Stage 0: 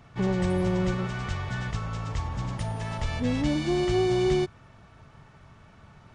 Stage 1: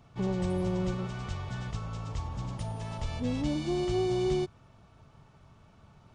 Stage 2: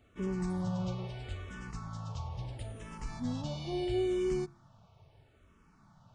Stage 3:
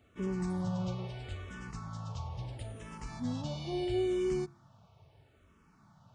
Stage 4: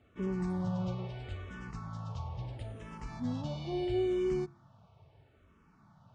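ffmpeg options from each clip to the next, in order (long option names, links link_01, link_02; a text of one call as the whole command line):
ffmpeg -i in.wav -af "equalizer=frequency=1800:width=1.9:gain=-7.5,volume=-4.5dB" out.wav
ffmpeg -i in.wav -filter_complex "[0:a]bandreject=frequency=69.62:width_type=h:width=4,bandreject=frequency=139.24:width_type=h:width=4,bandreject=frequency=208.86:width_type=h:width=4,bandreject=frequency=278.48:width_type=h:width=4,bandreject=frequency=348.1:width_type=h:width=4,bandreject=frequency=417.72:width_type=h:width=4,bandreject=frequency=487.34:width_type=h:width=4,bandreject=frequency=556.96:width_type=h:width=4,bandreject=frequency=626.58:width_type=h:width=4,bandreject=frequency=696.2:width_type=h:width=4,asplit=2[link_01][link_02];[link_02]afreqshift=-0.75[link_03];[link_01][link_03]amix=inputs=2:normalize=1,volume=-1.5dB" out.wav
ffmpeg -i in.wav -af "highpass=49" out.wav
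ffmpeg -i in.wav -af "aemphasis=mode=reproduction:type=50fm" out.wav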